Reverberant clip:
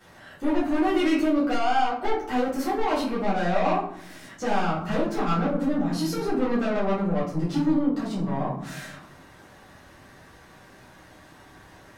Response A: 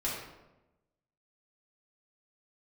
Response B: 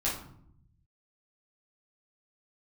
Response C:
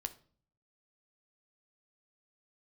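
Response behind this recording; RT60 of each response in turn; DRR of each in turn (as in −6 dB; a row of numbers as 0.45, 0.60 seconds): B; 1.0, 0.70, 0.45 seconds; −7.0, −8.5, 8.5 decibels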